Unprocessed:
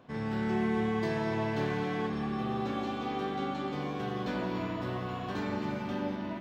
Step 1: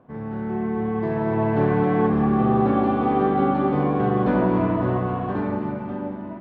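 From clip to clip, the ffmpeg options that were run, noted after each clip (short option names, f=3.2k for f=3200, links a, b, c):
-af "lowpass=1.2k,dynaudnorm=f=260:g=11:m=11.5dB,volume=3dB"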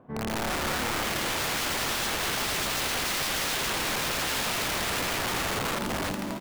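-af "aeval=exprs='(mod(16.8*val(0)+1,2)-1)/16.8':c=same,aecho=1:1:752|1504|2256|3008:0.224|0.0985|0.0433|0.0191"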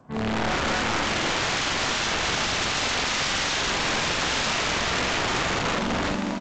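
-filter_complex "[0:a]acrossover=split=330|530|3200[a][b][c][d];[b]acrusher=bits=6:mix=0:aa=0.000001[e];[a][e][c][d]amix=inputs=4:normalize=0,asplit=2[f][g];[g]adelay=45,volume=-5.5dB[h];[f][h]amix=inputs=2:normalize=0,volume=3.5dB" -ar 16000 -c:a g722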